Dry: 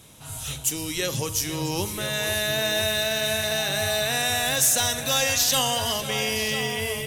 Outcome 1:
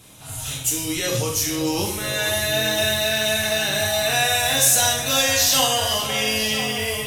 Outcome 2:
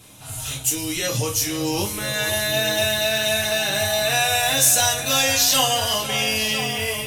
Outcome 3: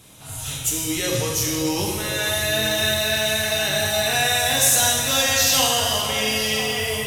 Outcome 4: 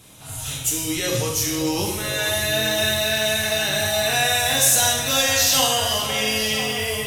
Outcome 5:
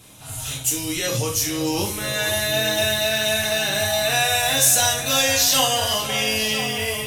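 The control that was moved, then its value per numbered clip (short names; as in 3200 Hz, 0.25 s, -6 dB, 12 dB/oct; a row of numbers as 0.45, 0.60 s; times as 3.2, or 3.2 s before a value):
non-linear reverb, gate: 190, 80, 480, 290, 120 ms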